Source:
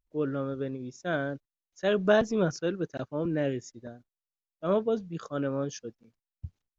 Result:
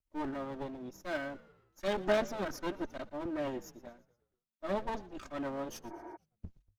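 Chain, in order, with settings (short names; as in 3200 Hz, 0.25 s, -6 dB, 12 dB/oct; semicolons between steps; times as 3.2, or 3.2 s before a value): minimum comb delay 3.2 ms; frequency-shifting echo 0.117 s, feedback 51%, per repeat -56 Hz, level -20 dB; spectral repair 5.93–6.14, 280–2400 Hz before; gain -4 dB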